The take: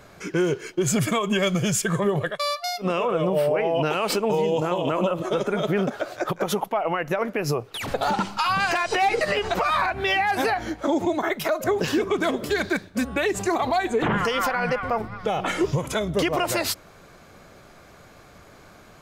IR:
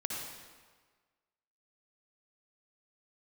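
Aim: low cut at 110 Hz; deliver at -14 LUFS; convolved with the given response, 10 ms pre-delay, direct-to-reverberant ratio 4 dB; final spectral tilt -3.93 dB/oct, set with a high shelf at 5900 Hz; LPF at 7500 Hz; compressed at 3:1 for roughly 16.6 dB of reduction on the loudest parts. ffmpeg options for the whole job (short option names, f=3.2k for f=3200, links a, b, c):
-filter_complex "[0:a]highpass=110,lowpass=7.5k,highshelf=f=5.9k:g=7.5,acompressor=threshold=-42dB:ratio=3,asplit=2[a][b];[1:a]atrim=start_sample=2205,adelay=10[c];[b][c]afir=irnorm=-1:irlink=0,volume=-7dB[d];[a][d]amix=inputs=2:normalize=0,volume=24dB"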